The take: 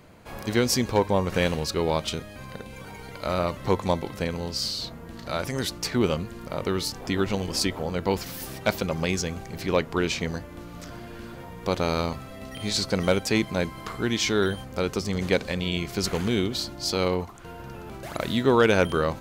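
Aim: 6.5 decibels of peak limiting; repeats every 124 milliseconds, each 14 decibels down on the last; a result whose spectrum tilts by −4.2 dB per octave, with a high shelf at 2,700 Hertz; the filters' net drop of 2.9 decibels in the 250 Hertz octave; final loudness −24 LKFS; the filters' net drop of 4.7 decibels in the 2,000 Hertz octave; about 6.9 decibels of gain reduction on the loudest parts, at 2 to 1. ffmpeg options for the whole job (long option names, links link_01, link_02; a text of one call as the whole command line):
ffmpeg -i in.wav -af "equalizer=frequency=250:width_type=o:gain=-4,equalizer=frequency=2000:width_type=o:gain=-8,highshelf=frequency=2700:gain=4,acompressor=threshold=-30dB:ratio=2,alimiter=limit=-22dB:level=0:latency=1,aecho=1:1:124|248:0.2|0.0399,volume=10dB" out.wav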